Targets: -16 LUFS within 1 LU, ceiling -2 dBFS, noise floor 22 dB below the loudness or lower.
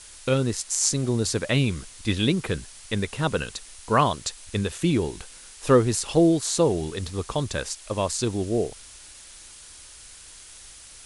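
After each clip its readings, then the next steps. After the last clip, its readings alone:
noise floor -46 dBFS; noise floor target -47 dBFS; loudness -25.0 LUFS; peak level -6.0 dBFS; loudness target -16.0 LUFS
-> noise reduction 6 dB, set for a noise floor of -46 dBFS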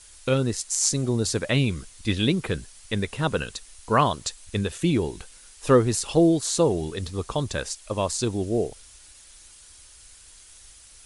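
noise floor -50 dBFS; loudness -25.0 LUFS; peak level -6.0 dBFS; loudness target -16.0 LUFS
-> trim +9 dB; peak limiter -2 dBFS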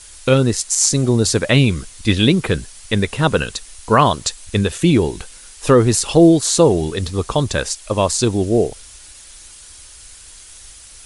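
loudness -16.5 LUFS; peak level -2.0 dBFS; noise floor -41 dBFS

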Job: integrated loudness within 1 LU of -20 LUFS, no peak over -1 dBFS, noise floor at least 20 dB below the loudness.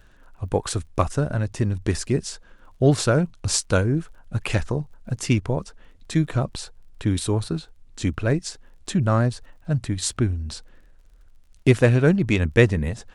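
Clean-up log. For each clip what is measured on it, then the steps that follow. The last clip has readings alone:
tick rate 31 per s; loudness -23.5 LUFS; peak level -3.5 dBFS; loudness target -20.0 LUFS
-> de-click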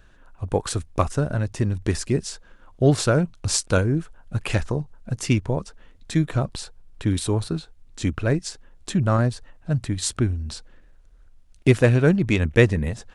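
tick rate 0 per s; loudness -23.5 LUFS; peak level -3.5 dBFS; loudness target -20.0 LUFS
-> trim +3.5 dB; peak limiter -1 dBFS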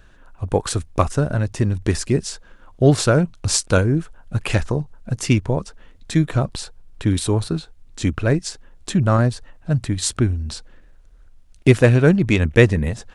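loudness -20.0 LUFS; peak level -1.0 dBFS; noise floor -48 dBFS

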